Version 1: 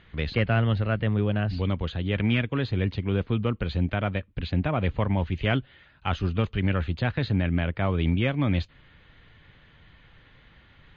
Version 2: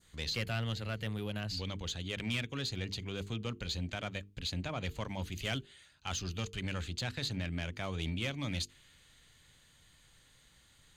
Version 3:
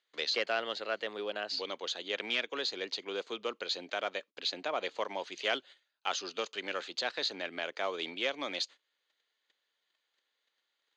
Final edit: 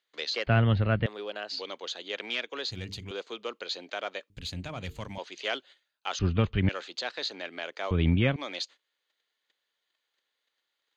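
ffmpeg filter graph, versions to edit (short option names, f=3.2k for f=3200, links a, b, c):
-filter_complex "[0:a]asplit=3[a][b][c];[1:a]asplit=2[d][e];[2:a]asplit=6[f][g][h][i][j][k];[f]atrim=end=0.472[l];[a]atrim=start=0.468:end=1.062[m];[g]atrim=start=1.058:end=2.712[n];[d]atrim=start=2.708:end=3.112[o];[h]atrim=start=3.108:end=4.302[p];[e]atrim=start=4.298:end=5.182[q];[i]atrim=start=5.178:end=6.192[r];[b]atrim=start=6.188:end=6.692[s];[j]atrim=start=6.688:end=7.912[t];[c]atrim=start=7.908:end=8.362[u];[k]atrim=start=8.358[v];[l][m]acrossfade=d=0.004:c1=hsin:c2=hsin[w];[w][n]acrossfade=d=0.004:c1=hsin:c2=hsin[x];[x][o]acrossfade=d=0.004:c1=hsin:c2=hsin[y];[y][p]acrossfade=d=0.004:c1=hsin:c2=hsin[z];[z][q]acrossfade=d=0.004:c1=hsin:c2=hsin[aa];[aa][r]acrossfade=d=0.004:c1=hsin:c2=hsin[ab];[ab][s]acrossfade=d=0.004:c1=hsin:c2=hsin[ac];[ac][t]acrossfade=d=0.004:c1=hsin:c2=hsin[ad];[ad][u]acrossfade=d=0.004:c1=hsin:c2=hsin[ae];[ae][v]acrossfade=d=0.004:c1=hsin:c2=hsin"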